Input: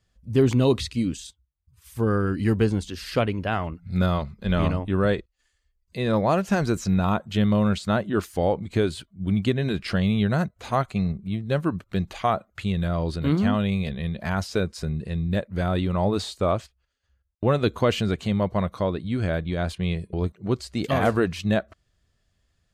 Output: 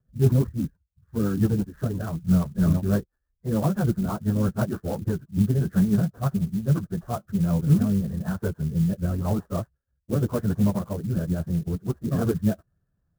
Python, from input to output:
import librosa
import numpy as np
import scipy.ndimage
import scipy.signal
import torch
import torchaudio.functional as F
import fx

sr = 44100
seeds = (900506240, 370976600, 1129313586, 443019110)

y = fx.diode_clip(x, sr, knee_db=-10.0)
y = scipy.signal.sosfilt(scipy.signal.butter(12, 1700.0, 'lowpass', fs=sr, output='sos'), y)
y = fx.peak_eq(y, sr, hz=150.0, db=11.0, octaves=0.97)
y = fx.stretch_vocoder_free(y, sr, factor=0.58)
y = fx.rotary_switch(y, sr, hz=6.0, then_hz=0.9, switch_at_s=6.8)
y = fx.clock_jitter(y, sr, seeds[0], jitter_ms=0.041)